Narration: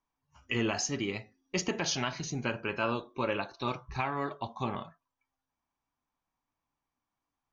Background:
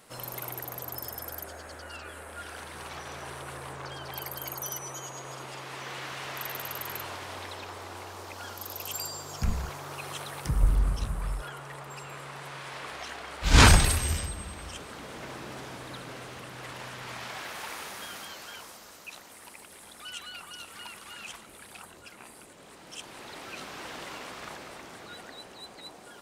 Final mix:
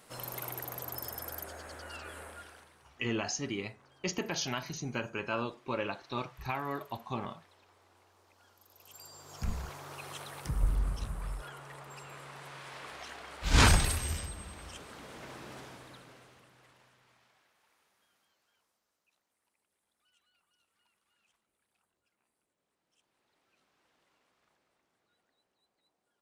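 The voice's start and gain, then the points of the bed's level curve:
2.50 s, -3.0 dB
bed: 2.25 s -2.5 dB
2.86 s -23.5 dB
8.69 s -23.5 dB
9.49 s -6 dB
15.58 s -6 dB
17.55 s -33.5 dB

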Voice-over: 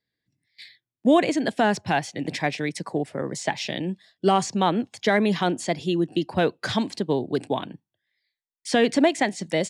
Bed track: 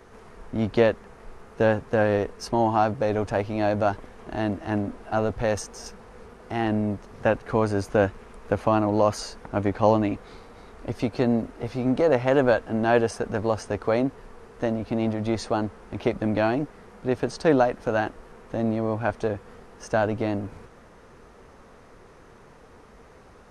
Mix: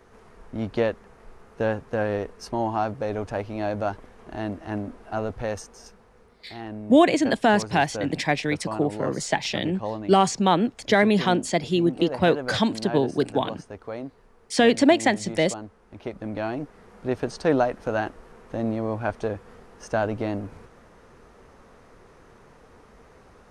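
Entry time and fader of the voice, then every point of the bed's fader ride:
5.85 s, +2.0 dB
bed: 5.40 s -4 dB
6.35 s -11.5 dB
15.82 s -11.5 dB
17.01 s -1.5 dB

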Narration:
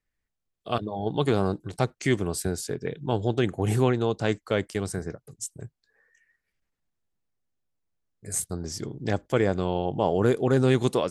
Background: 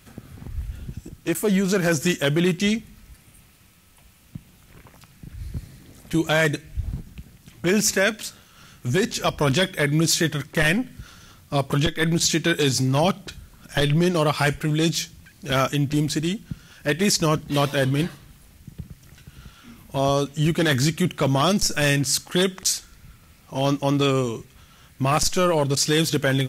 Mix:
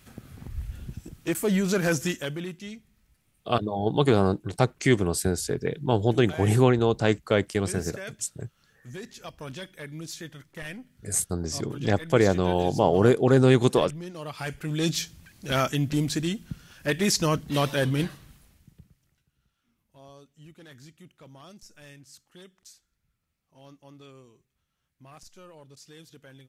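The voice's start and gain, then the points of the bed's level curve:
2.80 s, +3.0 dB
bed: 1.94 s -3.5 dB
2.61 s -18.5 dB
14.16 s -18.5 dB
14.90 s -3.5 dB
18.29 s -3.5 dB
19.34 s -29 dB

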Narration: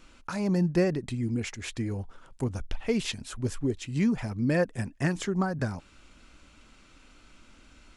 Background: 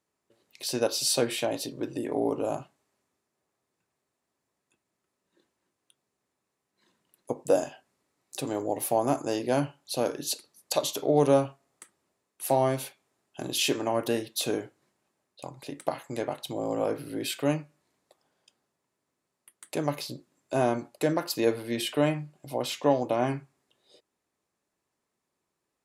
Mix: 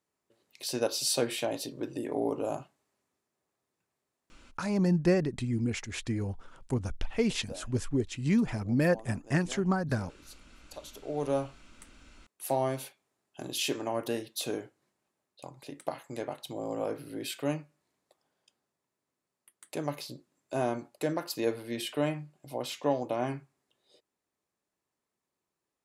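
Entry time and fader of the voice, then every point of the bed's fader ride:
4.30 s, -0.5 dB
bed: 4.42 s -3 dB
4.71 s -21.5 dB
10.64 s -21.5 dB
11.50 s -5 dB

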